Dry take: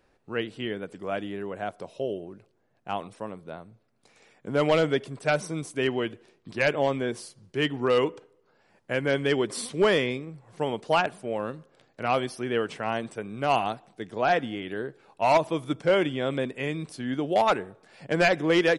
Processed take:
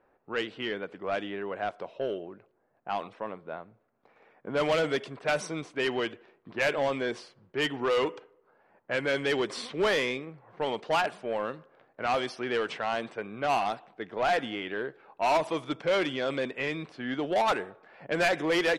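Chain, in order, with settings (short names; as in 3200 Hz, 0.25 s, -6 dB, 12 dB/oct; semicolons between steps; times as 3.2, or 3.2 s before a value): overdrive pedal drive 16 dB, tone 5500 Hz, clips at -13.5 dBFS; low-pass opened by the level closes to 1200 Hz, open at -18 dBFS; gain -5.5 dB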